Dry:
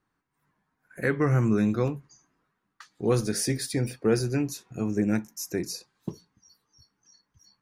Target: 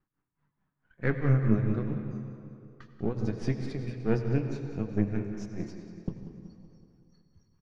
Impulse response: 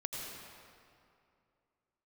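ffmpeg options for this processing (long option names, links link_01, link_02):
-filter_complex "[0:a]aeval=exprs='if(lt(val(0),0),0.447*val(0),val(0))':channel_layout=same,lowpass=frequency=6800:width=0.5412,lowpass=frequency=6800:width=1.3066,bass=frequency=250:gain=8,treble=frequency=4000:gain=-9,bandreject=frequency=115.9:width_type=h:width=4,bandreject=frequency=231.8:width_type=h:width=4,bandreject=frequency=347.7:width_type=h:width=4,bandreject=frequency=463.6:width_type=h:width=4,bandreject=frequency=579.5:width_type=h:width=4,bandreject=frequency=695.4:width_type=h:width=4,bandreject=frequency=811.3:width_type=h:width=4,bandreject=frequency=927.2:width_type=h:width=4,bandreject=frequency=1043.1:width_type=h:width=4,bandreject=frequency=1159:width_type=h:width=4,bandreject=frequency=1274.9:width_type=h:width=4,bandreject=frequency=1390.8:width_type=h:width=4,bandreject=frequency=1506.7:width_type=h:width=4,bandreject=frequency=1622.6:width_type=h:width=4,bandreject=frequency=1738.5:width_type=h:width=4,bandreject=frequency=1854.4:width_type=h:width=4,bandreject=frequency=1970.3:width_type=h:width=4,bandreject=frequency=2086.2:width_type=h:width=4,bandreject=frequency=2202.1:width_type=h:width=4,bandreject=frequency=2318:width_type=h:width=4,bandreject=frequency=2433.9:width_type=h:width=4,bandreject=frequency=2549.8:width_type=h:width=4,bandreject=frequency=2665.7:width_type=h:width=4,bandreject=frequency=2781.6:width_type=h:width=4,bandreject=frequency=2897.5:width_type=h:width=4,bandreject=frequency=3013.4:width_type=h:width=4,bandreject=frequency=3129.3:width_type=h:width=4,bandreject=frequency=3245.2:width_type=h:width=4,bandreject=frequency=3361.1:width_type=h:width=4,bandreject=frequency=3477:width_type=h:width=4,bandreject=frequency=3592.9:width_type=h:width=4,bandreject=frequency=3708.8:width_type=h:width=4,bandreject=frequency=3824.7:width_type=h:width=4,bandreject=frequency=3940.6:width_type=h:width=4,bandreject=frequency=4056.5:width_type=h:width=4,bandreject=frequency=4172.4:width_type=h:width=4,bandreject=frequency=4288.3:width_type=h:width=4,tremolo=f=4.6:d=0.92,aecho=1:1:188|376|564|752|940|1128:0.237|0.13|0.0717|0.0395|0.0217|0.0119,asplit=2[link_01][link_02];[1:a]atrim=start_sample=2205,lowpass=5600[link_03];[link_02][link_03]afir=irnorm=-1:irlink=0,volume=-3dB[link_04];[link_01][link_04]amix=inputs=2:normalize=0,volume=-6dB"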